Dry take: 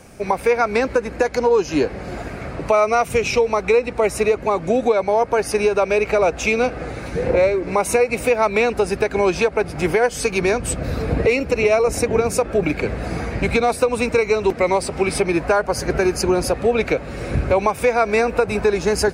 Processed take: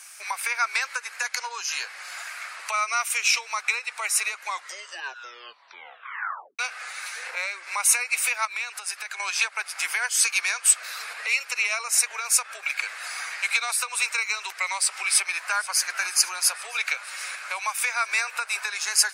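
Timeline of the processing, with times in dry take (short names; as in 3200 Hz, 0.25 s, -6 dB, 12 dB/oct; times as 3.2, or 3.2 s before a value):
4.4 tape stop 2.19 s
8.45–9.2 compressor 4:1, threshold -25 dBFS
14.96–15.87 echo throw 0.48 s, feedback 75%, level -16.5 dB
whole clip: compressor 1.5:1, threshold -20 dBFS; HPF 1200 Hz 24 dB/oct; bell 10000 Hz +9 dB 1.9 oct; gain +1 dB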